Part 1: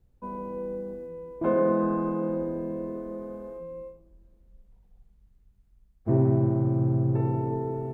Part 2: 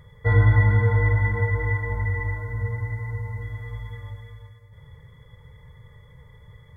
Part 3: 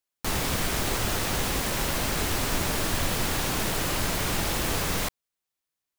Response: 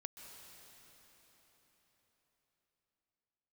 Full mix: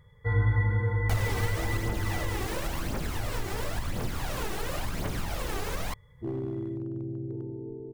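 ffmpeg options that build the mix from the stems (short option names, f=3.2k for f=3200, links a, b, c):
-filter_complex "[0:a]lowpass=f=360:t=q:w=3.5,asubboost=boost=3.5:cutoff=83,aeval=exprs='clip(val(0),-1,0.211)':c=same,adelay=150,volume=-14.5dB[a];[1:a]bandreject=f=630:w=12,volume=-8dB,asplit=3[b][c][d];[b]atrim=end=2.47,asetpts=PTS-STARTPTS,afade=t=out:st=2.466:d=0.004:c=hsin[e];[c]atrim=start=2.47:end=3.16,asetpts=PTS-STARTPTS,volume=0[f];[d]atrim=start=3.16,asetpts=PTS-STARTPTS,afade=t=in:d=0.004:c=hsin[g];[e][f][g]concat=n=3:v=0:a=1[h];[2:a]aphaser=in_gain=1:out_gain=1:delay=2.7:decay=0.55:speed=0.95:type=triangular,highshelf=f=2.3k:g=-8,adelay=850,volume=1.5dB[i];[a][i]amix=inputs=2:normalize=0,acompressor=threshold=-28dB:ratio=6,volume=0dB[j];[h][j]amix=inputs=2:normalize=0"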